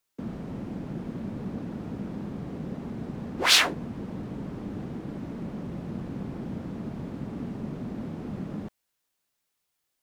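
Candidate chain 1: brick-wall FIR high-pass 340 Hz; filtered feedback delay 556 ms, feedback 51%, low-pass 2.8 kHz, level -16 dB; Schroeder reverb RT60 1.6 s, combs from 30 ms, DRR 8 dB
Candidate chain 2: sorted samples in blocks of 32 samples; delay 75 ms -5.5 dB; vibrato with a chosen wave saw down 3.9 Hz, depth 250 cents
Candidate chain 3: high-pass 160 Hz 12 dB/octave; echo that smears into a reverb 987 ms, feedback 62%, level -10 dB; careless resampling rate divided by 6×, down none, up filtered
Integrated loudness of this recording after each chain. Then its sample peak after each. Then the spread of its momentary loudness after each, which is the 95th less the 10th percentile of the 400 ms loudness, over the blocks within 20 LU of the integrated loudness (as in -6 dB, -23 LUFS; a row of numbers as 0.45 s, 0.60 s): -23.0 LUFS, -30.5 LUFS, -31.5 LUFS; -5.5 dBFS, -5.0 dBFS, -6.0 dBFS; 24 LU, 10 LU, 15 LU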